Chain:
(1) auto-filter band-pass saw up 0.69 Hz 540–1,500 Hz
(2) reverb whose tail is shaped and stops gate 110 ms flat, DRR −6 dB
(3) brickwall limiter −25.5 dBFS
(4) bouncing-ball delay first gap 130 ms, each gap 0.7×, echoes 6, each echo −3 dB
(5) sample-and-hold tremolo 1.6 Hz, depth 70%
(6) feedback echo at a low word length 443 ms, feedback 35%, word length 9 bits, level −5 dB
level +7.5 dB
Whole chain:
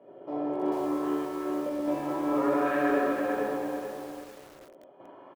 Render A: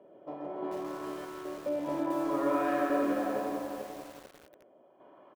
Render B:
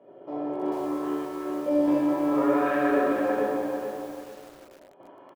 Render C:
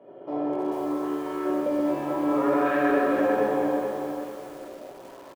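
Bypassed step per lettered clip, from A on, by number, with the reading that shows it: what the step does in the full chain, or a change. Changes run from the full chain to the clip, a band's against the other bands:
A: 2, change in crest factor +2.0 dB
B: 3, 250 Hz band +2.0 dB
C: 5, change in momentary loudness spread +4 LU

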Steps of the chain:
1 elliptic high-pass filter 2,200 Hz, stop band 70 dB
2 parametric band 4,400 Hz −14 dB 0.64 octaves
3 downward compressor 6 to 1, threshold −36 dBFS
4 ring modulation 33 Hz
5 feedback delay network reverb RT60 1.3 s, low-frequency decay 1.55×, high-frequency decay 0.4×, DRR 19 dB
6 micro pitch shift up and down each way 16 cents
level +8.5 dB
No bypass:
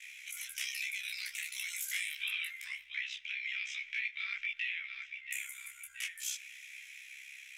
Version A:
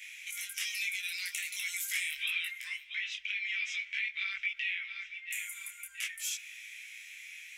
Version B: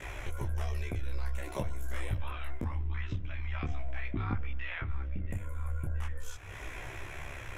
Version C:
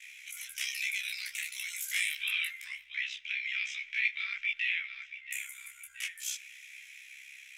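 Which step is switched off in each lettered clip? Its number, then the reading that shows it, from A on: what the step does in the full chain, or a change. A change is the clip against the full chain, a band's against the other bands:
4, change in crest factor +2.5 dB
1, 1 kHz band +30.0 dB
3, average gain reduction 1.5 dB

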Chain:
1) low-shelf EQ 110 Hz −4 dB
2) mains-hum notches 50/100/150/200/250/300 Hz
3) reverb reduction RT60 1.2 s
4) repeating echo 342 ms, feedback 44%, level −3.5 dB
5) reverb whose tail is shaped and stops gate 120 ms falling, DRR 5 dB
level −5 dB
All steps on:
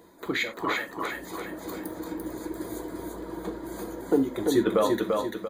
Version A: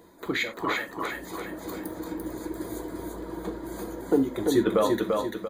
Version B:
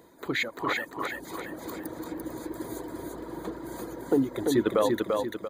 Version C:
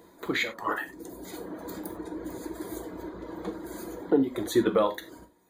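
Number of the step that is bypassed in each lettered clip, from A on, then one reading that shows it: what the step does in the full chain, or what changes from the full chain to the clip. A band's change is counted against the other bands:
1, 125 Hz band +1.5 dB
5, echo-to-direct ratio 0.0 dB to −2.5 dB
4, echo-to-direct ratio 0.0 dB to −5.0 dB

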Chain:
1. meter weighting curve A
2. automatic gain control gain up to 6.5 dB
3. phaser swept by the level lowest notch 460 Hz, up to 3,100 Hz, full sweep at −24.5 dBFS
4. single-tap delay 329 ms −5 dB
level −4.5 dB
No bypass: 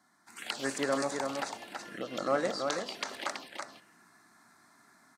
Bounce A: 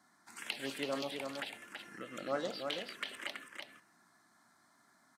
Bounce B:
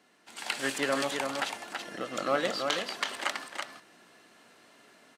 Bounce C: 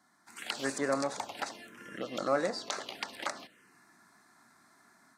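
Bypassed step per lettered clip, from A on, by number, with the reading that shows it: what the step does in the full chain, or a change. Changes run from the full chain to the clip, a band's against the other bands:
2, change in momentary loudness spread −2 LU
3, 4 kHz band +4.5 dB
4, change in momentary loudness spread +3 LU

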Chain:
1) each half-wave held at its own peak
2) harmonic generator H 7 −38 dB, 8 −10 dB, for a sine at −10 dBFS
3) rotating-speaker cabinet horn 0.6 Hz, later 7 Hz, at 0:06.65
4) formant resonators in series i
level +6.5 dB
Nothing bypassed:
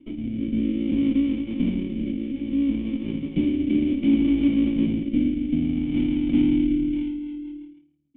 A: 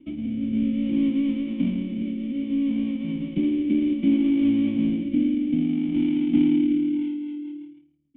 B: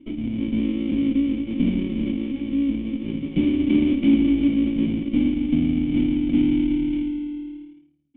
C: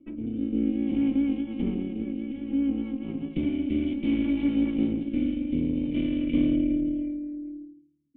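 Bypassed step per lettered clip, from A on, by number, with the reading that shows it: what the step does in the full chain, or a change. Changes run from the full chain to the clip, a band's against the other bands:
2, 250 Hz band +1.5 dB
3, change in integrated loudness +1.5 LU
1, distortion level −5 dB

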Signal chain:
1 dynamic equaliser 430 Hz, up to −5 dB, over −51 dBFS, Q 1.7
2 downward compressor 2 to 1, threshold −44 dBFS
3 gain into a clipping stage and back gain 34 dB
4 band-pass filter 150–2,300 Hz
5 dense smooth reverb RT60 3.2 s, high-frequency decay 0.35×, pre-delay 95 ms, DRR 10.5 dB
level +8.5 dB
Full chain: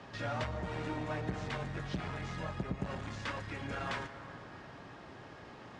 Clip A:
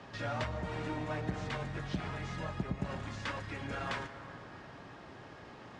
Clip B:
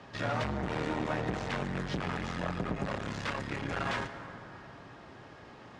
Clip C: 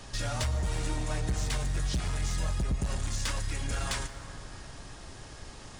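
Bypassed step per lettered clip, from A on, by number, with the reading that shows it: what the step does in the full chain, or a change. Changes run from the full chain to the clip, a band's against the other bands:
3, distortion level −21 dB
2, average gain reduction 6.5 dB
4, 8 kHz band +19.0 dB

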